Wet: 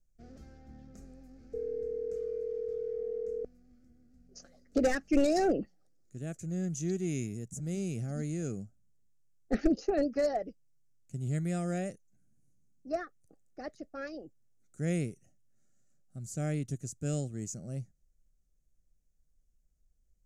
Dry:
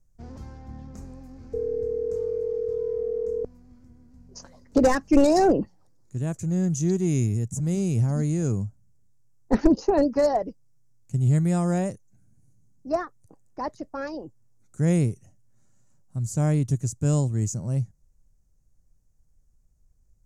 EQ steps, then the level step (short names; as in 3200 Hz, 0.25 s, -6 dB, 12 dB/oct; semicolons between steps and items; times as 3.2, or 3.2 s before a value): bell 100 Hz -10.5 dB 0.86 oct; dynamic EQ 2400 Hz, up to +5 dB, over -46 dBFS, Q 1.1; Butterworth band-stop 970 Hz, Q 2.2; -8.0 dB